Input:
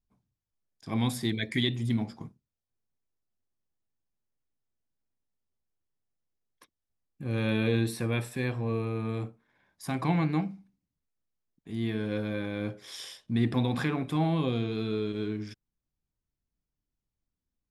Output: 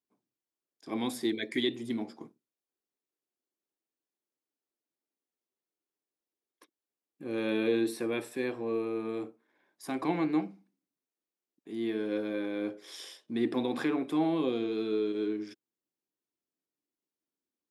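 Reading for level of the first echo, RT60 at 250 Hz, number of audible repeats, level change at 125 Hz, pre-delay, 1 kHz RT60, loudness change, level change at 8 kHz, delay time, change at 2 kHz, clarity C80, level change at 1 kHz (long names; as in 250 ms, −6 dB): no echo audible, no reverb audible, no echo audible, −17.0 dB, no reverb audible, no reverb audible, −2.0 dB, −3.5 dB, no echo audible, −3.5 dB, no reverb audible, −2.5 dB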